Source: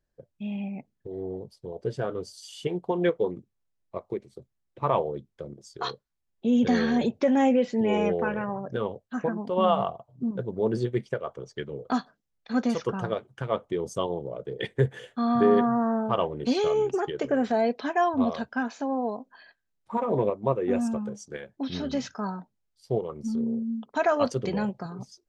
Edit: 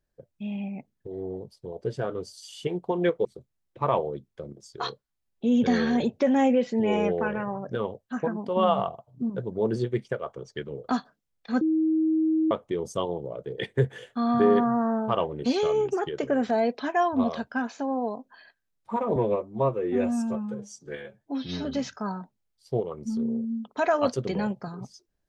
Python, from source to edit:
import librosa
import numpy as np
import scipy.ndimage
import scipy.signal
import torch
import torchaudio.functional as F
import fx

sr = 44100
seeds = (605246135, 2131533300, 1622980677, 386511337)

y = fx.edit(x, sr, fx.cut(start_s=3.25, length_s=1.01),
    fx.bleep(start_s=12.62, length_s=0.9, hz=317.0, db=-20.0),
    fx.stretch_span(start_s=20.17, length_s=1.66, factor=1.5), tone=tone)